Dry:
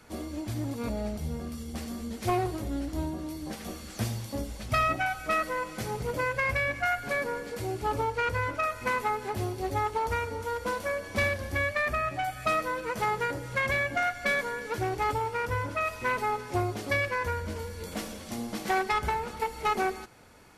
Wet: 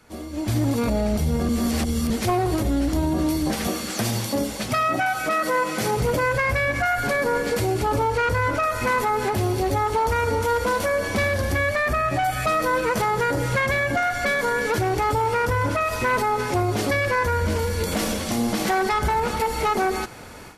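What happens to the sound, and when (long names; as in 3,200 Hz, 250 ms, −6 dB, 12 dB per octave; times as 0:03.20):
0:01.49–0:02.10: reverse
0:03.67–0:05.97: high-pass filter 160 Hz
whole clip: dynamic equaliser 2,500 Hz, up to −4 dB, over −42 dBFS, Q 2.2; automatic gain control gain up to 15.5 dB; brickwall limiter −14.5 dBFS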